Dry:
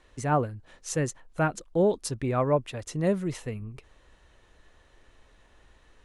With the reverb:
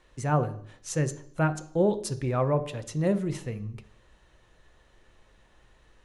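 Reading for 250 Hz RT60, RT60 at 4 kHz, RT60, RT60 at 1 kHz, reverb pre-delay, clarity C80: 0.70 s, 0.70 s, 0.60 s, 0.60 s, 3 ms, 18.5 dB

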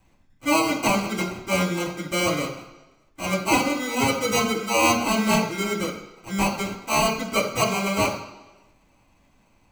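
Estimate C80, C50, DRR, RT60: 10.0 dB, 7.5 dB, −8.0 dB, 1.1 s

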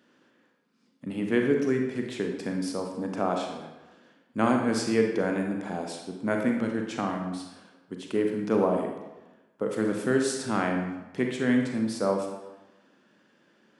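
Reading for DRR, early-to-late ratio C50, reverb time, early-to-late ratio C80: 2.0 dB, 4.0 dB, 1.1 s, 6.0 dB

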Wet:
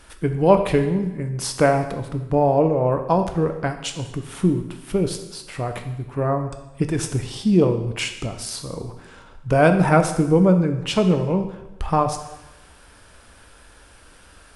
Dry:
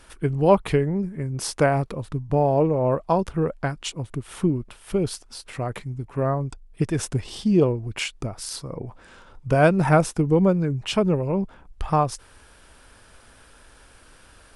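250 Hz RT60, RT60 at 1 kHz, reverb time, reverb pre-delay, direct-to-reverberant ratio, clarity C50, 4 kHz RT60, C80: 1.0 s, 1.0 s, 1.0 s, 4 ms, 6.0 dB, 9.0 dB, 0.95 s, 11.0 dB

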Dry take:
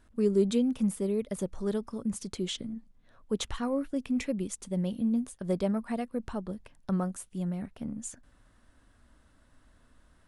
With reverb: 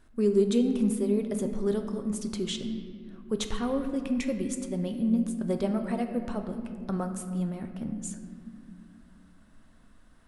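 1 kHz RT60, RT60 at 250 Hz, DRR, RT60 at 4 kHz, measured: 1.9 s, 3.7 s, 5.5 dB, 1.2 s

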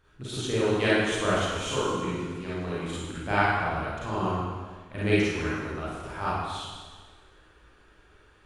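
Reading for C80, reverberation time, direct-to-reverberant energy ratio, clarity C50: −0.5 dB, 1.5 s, −9.5 dB, −5.0 dB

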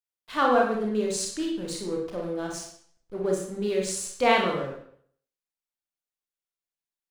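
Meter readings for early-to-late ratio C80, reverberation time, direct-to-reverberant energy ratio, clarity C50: 7.0 dB, 0.60 s, −1.0 dB, 3.0 dB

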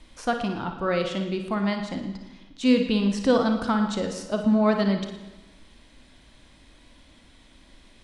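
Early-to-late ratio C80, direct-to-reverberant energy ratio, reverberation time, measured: 8.5 dB, 4.5 dB, 1.1 s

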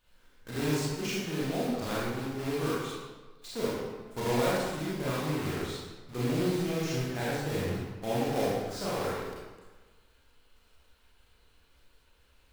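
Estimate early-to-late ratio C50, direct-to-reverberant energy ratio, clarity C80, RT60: −3.0 dB, −8.0 dB, 0.0 dB, 1.3 s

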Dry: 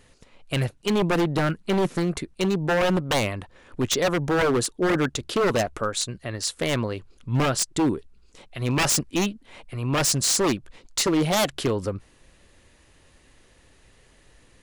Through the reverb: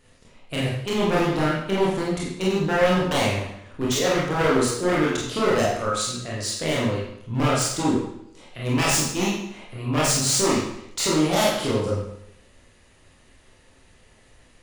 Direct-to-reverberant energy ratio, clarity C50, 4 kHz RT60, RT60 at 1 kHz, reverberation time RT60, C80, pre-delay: −6.0 dB, 1.5 dB, 0.70 s, 0.75 s, 0.75 s, 4.5 dB, 25 ms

